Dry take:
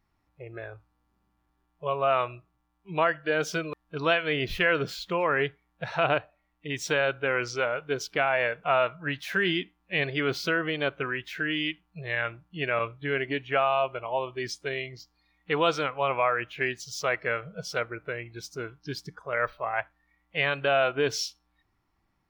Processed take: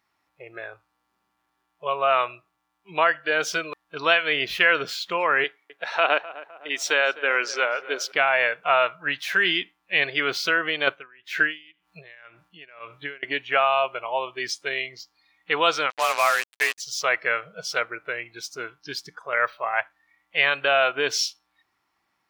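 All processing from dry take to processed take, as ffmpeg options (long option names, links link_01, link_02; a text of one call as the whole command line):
ffmpeg -i in.wav -filter_complex "[0:a]asettb=1/sr,asplit=3[link_01][link_02][link_03];[link_01]atrim=end=5.444[link_04];[link_02]atrim=start=5.44:end=8.12,asetpts=PTS-STARTPTS,afade=type=in:duration=0.004:curve=qsin,afade=type=out:start_time=2.676:duration=0.004:curve=qsin,highpass=frequency=230:width=0.5412,highpass=frequency=230:width=1.3066,asplit=2[link_05][link_06];[link_06]adelay=256,lowpass=frequency=1800:poles=1,volume=-16dB,asplit=2[link_07][link_08];[link_08]adelay=256,lowpass=frequency=1800:poles=1,volume=0.49,asplit=2[link_09][link_10];[link_10]adelay=256,lowpass=frequency=1800:poles=1,volume=0.49,asplit=2[link_11][link_12];[link_12]adelay=256,lowpass=frequency=1800:poles=1,volume=0.49[link_13];[link_05][link_07][link_09][link_11][link_13]amix=inputs=5:normalize=0,atrim=end_sample=118188[link_14];[link_03]atrim=start=8.116[link_15];[link_04][link_14]acrossfade=duration=0.004:curve1=hsin:curve2=qsin[link_16];[link_16][link_15]acrossfade=duration=0.004:curve1=qsin:curve2=hsin,asettb=1/sr,asplit=3[link_17][link_18][link_19];[link_17]atrim=end=10.874[link_20];[link_18]atrim=start=10.87:end=13.23,asetpts=PTS-STARTPTS,afade=type=in:duration=0.004:curve=qsin,afade=type=out:start_time=2.356:duration=0.004:curve=qsin,acontrast=41,aeval=exprs='val(0)*pow(10,-33*(0.5-0.5*cos(2*PI*1.9*n/s))/20)':channel_layout=same[link_21];[link_19]atrim=start=13.226[link_22];[link_20][link_21]acrossfade=duration=0.004:curve1=hsin:curve2=qsin[link_23];[link_23][link_22]acrossfade=duration=0.004:curve1=qsin:curve2=hsin,asettb=1/sr,asplit=3[link_24][link_25][link_26];[link_24]atrim=end=15.904[link_27];[link_25]atrim=start=15.9:end=16.78,asetpts=PTS-STARTPTS,afade=type=in:duration=0.004:curve=qsin,afade=type=out:start_time=0.876:duration=0.004:curve=qsin,bass=frequency=250:gain=-14,treble=frequency=4000:gain=-4,afreqshift=36,acrusher=bits=4:mix=0:aa=0.5[link_28];[link_26]atrim=start=16.776[link_29];[link_27][link_28]acrossfade=duration=0.004:curve1=hsin:curve2=qsin[link_30];[link_30][link_29]acrossfade=duration=0.004:curve1=qsin:curve2=hsin,highpass=frequency=1100:poles=1,highshelf=frequency=8500:gain=-4,volume=8dB" out.wav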